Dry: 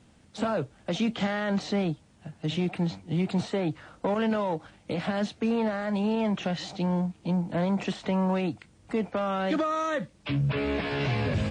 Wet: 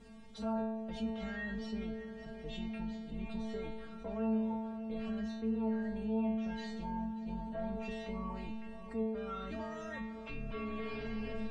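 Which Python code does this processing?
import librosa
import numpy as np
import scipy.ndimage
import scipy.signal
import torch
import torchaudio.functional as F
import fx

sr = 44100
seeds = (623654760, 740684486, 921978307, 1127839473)

y = fx.octave_divider(x, sr, octaves=2, level_db=2.0)
y = fx.high_shelf(y, sr, hz=2900.0, db=-10.5)
y = fx.stiff_resonator(y, sr, f0_hz=220.0, decay_s=0.73, stiffness=0.002)
y = fx.echo_heads(y, sr, ms=195, heads='first and third', feedback_pct=65, wet_db=-21.0)
y = fx.env_flatten(y, sr, amount_pct=50)
y = F.gain(torch.from_numpy(y), -1.5).numpy()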